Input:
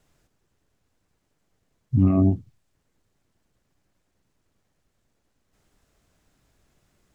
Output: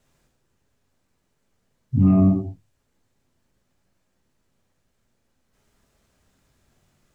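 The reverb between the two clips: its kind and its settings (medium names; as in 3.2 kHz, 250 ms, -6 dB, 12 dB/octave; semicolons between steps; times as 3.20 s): gated-style reverb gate 230 ms falling, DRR 0 dB; trim -1.5 dB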